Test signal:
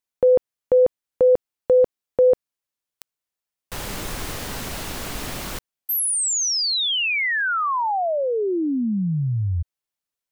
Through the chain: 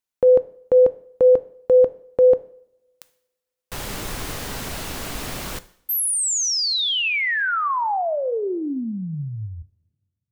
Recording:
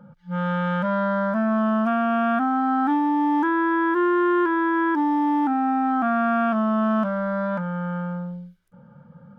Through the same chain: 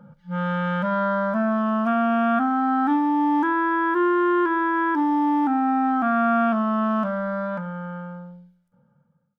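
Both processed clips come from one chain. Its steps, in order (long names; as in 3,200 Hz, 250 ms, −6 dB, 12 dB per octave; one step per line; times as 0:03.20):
fade-out on the ending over 2.43 s
coupled-rooms reverb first 0.58 s, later 1.9 s, from −24 dB, DRR 13.5 dB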